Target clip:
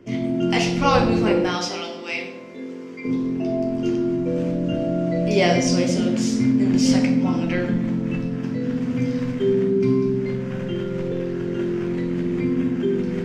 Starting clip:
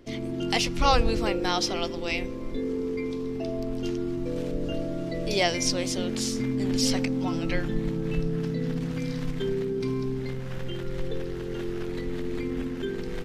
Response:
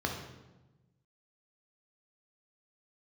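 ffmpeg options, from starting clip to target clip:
-filter_complex "[0:a]asettb=1/sr,asplit=3[a][b][c];[a]atrim=end=1.474[d];[b]atrim=start=1.47:end=3.05,asetpts=PTS-STARTPTS,afade=t=in:d=0.004:c=qsin,afade=t=out:st=1.576:d=0.004:c=qsin,highpass=f=1.1k:p=1[e];[c]atrim=start=3.046[f];[d][e]acrossfade=d=0.004:c1=hsin:c2=qsin[g];[g][f]acrossfade=d=0.004:c1=qsin:c2=hsin[h];[1:a]atrim=start_sample=2205,asetrate=61740,aresample=44100[i];[h][i]afir=irnorm=-1:irlink=0"

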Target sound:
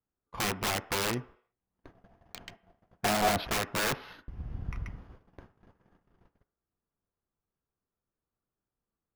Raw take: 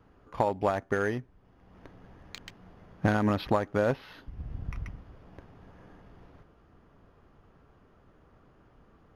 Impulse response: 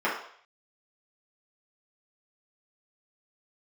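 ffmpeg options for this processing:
-filter_complex "[0:a]aeval=exprs='(mod(15.8*val(0)+1,2)-1)/15.8':c=same,agate=range=-32dB:threshold=-49dB:ratio=16:detection=peak,asettb=1/sr,asplit=3[a][b][c];[a]atrim=end=1.904[d];[b]atrim=start=1.9:end=3.51,asetpts=PTS-STARTPTS,afade=t=in:d=0.004:c=qsin,afade=t=out:st=1.606:d=0.004:c=qsin,equalizer=f=680:t=o:w=0.23:g=12.5[e];[c]atrim=start=3.506[f];[d][e]acrossfade=d=0.004:c1=hsin:c2=qsin[g];[g][f]acrossfade=d=0.004:c1=qsin:c2=hsin,asplit=2[h][i];[1:a]atrim=start_sample=2205,lowpass=3.7k[j];[i][j]afir=irnorm=-1:irlink=0,volume=-25.5dB[k];[h][k]amix=inputs=2:normalize=0"

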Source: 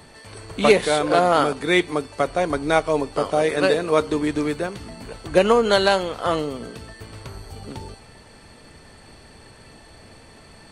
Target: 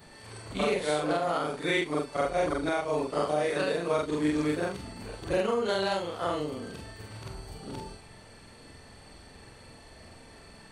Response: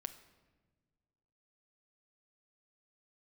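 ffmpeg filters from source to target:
-af "afftfilt=real='re':imag='-im':win_size=4096:overlap=0.75,alimiter=limit=-17dB:level=0:latency=1:release=381"

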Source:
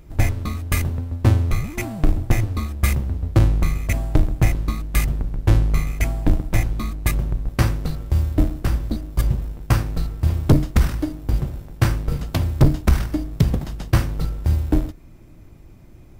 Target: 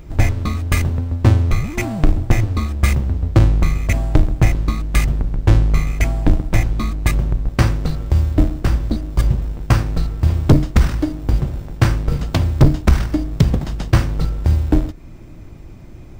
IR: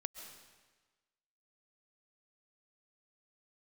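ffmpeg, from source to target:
-filter_complex "[0:a]equalizer=f=12k:w=1.9:g=-14,asplit=2[a][b];[b]acompressor=threshold=-28dB:ratio=6,volume=-0.5dB[c];[a][c]amix=inputs=2:normalize=0,volume=2dB"

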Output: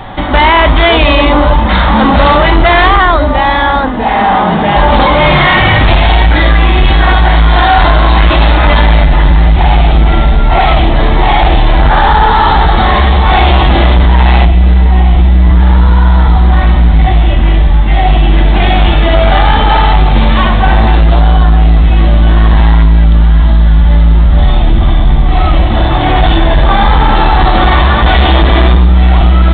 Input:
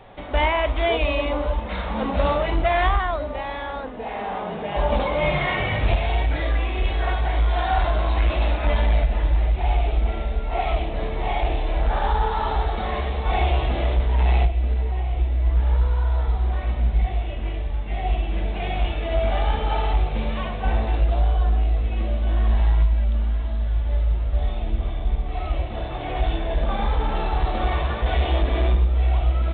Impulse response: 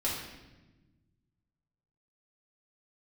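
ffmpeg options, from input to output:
-af "superequalizer=7b=0.355:8b=0.501:12b=0.562:16b=0.631,apsyclip=24.5dB,volume=-2dB"

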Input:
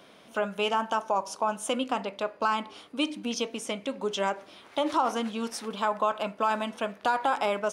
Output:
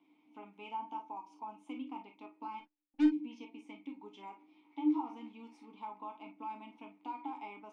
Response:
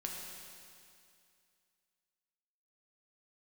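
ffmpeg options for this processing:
-filter_complex "[0:a]asplit=3[a][b][c];[a]bandpass=f=300:t=q:w=8,volume=0dB[d];[b]bandpass=f=870:t=q:w=8,volume=-6dB[e];[c]bandpass=f=2.24k:t=q:w=8,volume=-9dB[f];[d][e][f]amix=inputs=3:normalize=0,asplit=3[g][h][i];[g]afade=t=out:st=2.58:d=0.02[j];[h]aeval=exprs='0.0841*(cos(1*acos(clip(val(0)/0.0841,-1,1)))-cos(1*PI/2))+0.00119*(cos(6*acos(clip(val(0)/0.0841,-1,1)))-cos(6*PI/2))+0.0119*(cos(7*acos(clip(val(0)/0.0841,-1,1)))-cos(7*PI/2))':c=same,afade=t=in:st=2.58:d=0.02,afade=t=out:st=3.07:d=0.02[k];[i]afade=t=in:st=3.07:d=0.02[l];[j][k][l]amix=inputs=3:normalize=0[m];[1:a]atrim=start_sample=2205,afade=t=out:st=0.15:d=0.01,atrim=end_sample=7056,asetrate=74970,aresample=44100[n];[m][n]afir=irnorm=-1:irlink=0,volume=2dB"

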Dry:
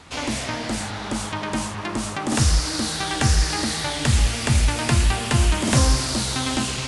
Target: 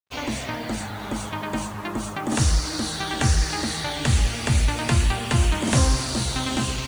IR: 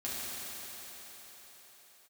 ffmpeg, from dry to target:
-filter_complex "[0:a]bandreject=f=5.1k:w=16,afftdn=nr=15:nf=-36,acrusher=bits=6:mix=0:aa=0.5,asplit=2[a][b];[b]aecho=0:1:864:0.224[c];[a][c]amix=inputs=2:normalize=0,volume=-1.5dB"

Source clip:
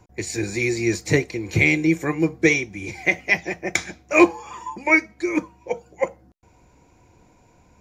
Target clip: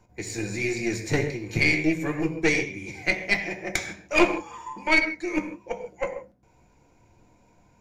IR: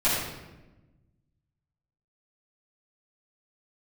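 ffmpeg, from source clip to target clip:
-filter_complex "[0:a]asplit=2[a][b];[1:a]atrim=start_sample=2205,afade=t=out:st=0.2:d=0.01,atrim=end_sample=9261,asetrate=39249,aresample=44100[c];[b][c]afir=irnorm=-1:irlink=0,volume=-17.5dB[d];[a][d]amix=inputs=2:normalize=0,aeval=exprs='(tanh(2.24*val(0)+0.75)-tanh(0.75))/2.24':c=same,flanger=delay=4.4:depth=4.6:regen=-77:speed=1.2:shape=triangular,volume=2dB"

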